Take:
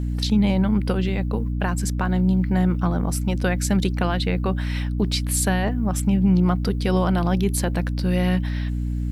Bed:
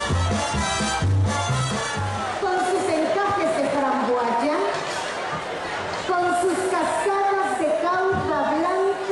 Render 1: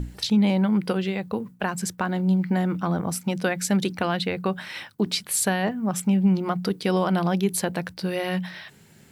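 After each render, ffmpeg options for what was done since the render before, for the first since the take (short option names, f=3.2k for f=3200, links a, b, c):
-af "bandreject=f=60:t=h:w=6,bandreject=f=120:t=h:w=6,bandreject=f=180:t=h:w=6,bandreject=f=240:t=h:w=6,bandreject=f=300:t=h:w=6"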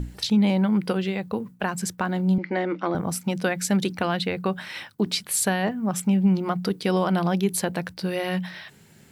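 -filter_complex "[0:a]asettb=1/sr,asplit=3[a][b][c];[a]atrim=end=2.384[d];[b]atrim=start=2.38:end=2.95,asetpts=PTS-STARTPTS,afade=t=in:d=0.004:c=qsin,afade=t=out:st=0.566:d=0.004:c=qsin,highpass=340,equalizer=f=340:t=q:w=4:g=9,equalizer=f=540:t=q:w=4:g=6,equalizer=f=2.1k:t=q:w=4:g=9,lowpass=f=5.4k:w=0.5412,lowpass=f=5.4k:w=1.3066[e];[c]atrim=start=2.946[f];[d][e]acrossfade=d=0.004:c1=hsin:c2=qsin[g];[g][f]acrossfade=d=0.004:c1=qsin:c2=hsin"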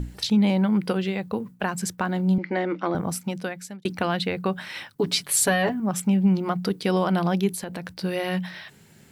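-filter_complex "[0:a]asettb=1/sr,asplit=3[a][b][c];[a]atrim=end=4.954[d];[b]atrim=start=4.95:end=5.8,asetpts=PTS-STARTPTS,afade=t=in:d=0.004:c=qsin,afade=t=out:st=0.846:d=0.004:c=qsin,aecho=1:1:7.1:0.92,atrim=end_sample=37485[e];[c]atrim=start=5.796[f];[d][e]acrossfade=d=0.004:c1=hsin:c2=qsin[g];[g][f]acrossfade=d=0.004:c1=qsin:c2=hsin,asettb=1/sr,asplit=3[h][i][j];[h]atrim=end=7.504[k];[i]atrim=start=7.5:end=8.04,asetpts=PTS-STARTPTS,afade=t=in:d=0.004:c=qsin,afade=t=out:st=0.536:d=0.004:c=qsin,acompressor=threshold=-29dB:ratio=5:attack=3.2:release=140:knee=1:detection=peak[l];[j]atrim=start=8.036[m];[k][l]acrossfade=d=0.004:c1=hsin:c2=qsin[n];[n][m]acrossfade=d=0.004:c1=qsin:c2=hsin,asplit=2[o][p];[o]atrim=end=3.85,asetpts=PTS-STARTPTS,afade=t=out:st=3.05:d=0.8[q];[p]atrim=start=3.85,asetpts=PTS-STARTPTS,afade=t=in:d=0.004:c=hsin[r];[q][r]concat=n=2:v=0:a=1"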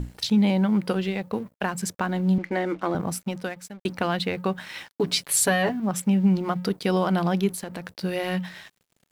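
-af "aeval=exprs='sgn(val(0))*max(abs(val(0))-0.00422,0)':c=same"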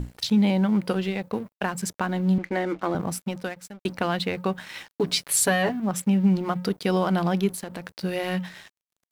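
-af "aeval=exprs='sgn(val(0))*max(abs(val(0))-0.00224,0)':c=same"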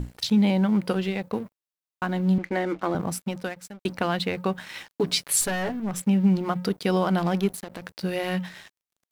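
-filter_complex "[0:a]asettb=1/sr,asplit=3[a][b][c];[a]atrim=end=5.414[d];[b]atrim=start=5.41:end=6.01,asetpts=PTS-STARTPTS,afade=t=in:d=0.004:c=qsin,afade=t=out:st=0.596:d=0.004:c=qsin,aeval=exprs='(tanh(14.1*val(0)+0.3)-tanh(0.3))/14.1':c=same[e];[c]atrim=start=6.006[f];[d][e]acrossfade=d=0.004:c1=hsin:c2=qsin[g];[g][f]acrossfade=d=0.004:c1=qsin:c2=hsin,asettb=1/sr,asplit=3[h][i][j];[h]atrim=end=7.194[k];[i]atrim=start=7.19:end=7.82,asetpts=PTS-STARTPTS,afade=t=in:d=0.004:c=qsin,afade=t=out:st=0.626:d=0.004:c=qsin,aeval=exprs='sgn(val(0))*max(abs(val(0))-0.00794,0)':c=same[l];[j]atrim=start=7.816[m];[k][l]acrossfade=d=0.004:c1=hsin:c2=qsin[n];[n][m]acrossfade=d=0.004:c1=qsin:c2=hsin,asplit=8[o][p][q][r][s][t][u][v];[o]atrim=end=1.602[w];[p]atrim=start=1.528:end=1.602[x];[q]atrim=start=1.528:end=1.602[y];[r]atrim=start=1.528:end=1.602[z];[s]atrim=start=1.528:end=1.602[aa];[t]atrim=start=1.528:end=1.602[ab];[u]atrim=start=1.528:end=1.602[ac];[v]atrim=start=2.018[ad];[w][x]acrossfade=d=0.004:c1=hsin:c2=hsin[ae];[ae][y]acrossfade=d=0.004:c1=hsin:c2=hsin[af];[af][z]acrossfade=d=0.004:c1=hsin:c2=hsin[ag];[ag][aa]acrossfade=d=0.004:c1=hsin:c2=hsin[ah];[ah][ab]acrossfade=d=0.004:c1=hsin:c2=hsin[ai];[ai][ac]acrossfade=d=0.004:c1=hsin:c2=hsin[aj];[aj][ad]acrossfade=d=0.004:c1=hsin:c2=hsin"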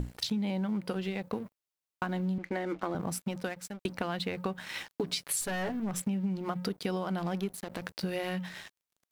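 -af "acompressor=threshold=-30dB:ratio=6"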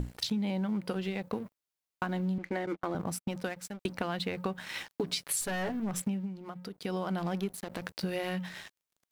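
-filter_complex "[0:a]asettb=1/sr,asplit=3[a][b][c];[a]atrim=end=2.664[d];[b]atrim=start=2.66:end=3.32,asetpts=PTS-STARTPTS,afade=t=in:d=0.004:c=qsin,afade=t=out:st=0.656:d=0.004:c=qsin,agate=range=-34dB:threshold=-37dB:ratio=16:release=100:detection=peak[e];[c]atrim=start=3.316[f];[d][e]acrossfade=d=0.004:c1=hsin:c2=qsin[g];[g][f]acrossfade=d=0.004:c1=qsin:c2=hsin,asplit=3[h][i][j];[h]atrim=end=6.34,asetpts=PTS-STARTPTS,afade=t=out:st=6.07:d=0.27:silence=0.354813[k];[i]atrim=start=6.34:end=6.72,asetpts=PTS-STARTPTS,volume=-9dB[l];[j]atrim=start=6.72,asetpts=PTS-STARTPTS,afade=t=in:d=0.27:silence=0.354813[m];[k][l][m]concat=n=3:v=0:a=1"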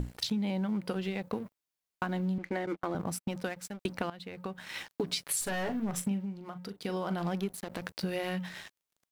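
-filter_complex "[0:a]asplit=3[a][b][c];[a]afade=t=out:st=5.45:d=0.02[d];[b]asplit=2[e][f];[f]adelay=40,volume=-11.5dB[g];[e][g]amix=inputs=2:normalize=0,afade=t=in:st=5.45:d=0.02,afade=t=out:st=7.28:d=0.02[h];[c]afade=t=in:st=7.28:d=0.02[i];[d][h][i]amix=inputs=3:normalize=0,asplit=2[j][k];[j]atrim=end=4.1,asetpts=PTS-STARTPTS,afade=t=out:st=4.096:d=0.004:c=hsin:silence=0.158489[l];[k]atrim=start=4.1,asetpts=PTS-STARTPTS,afade=t=in:d=0.81:silence=0.158489[m];[l][m]concat=n=2:v=0:a=1"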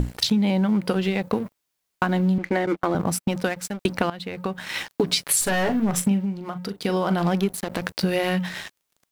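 -af "volume=11dB"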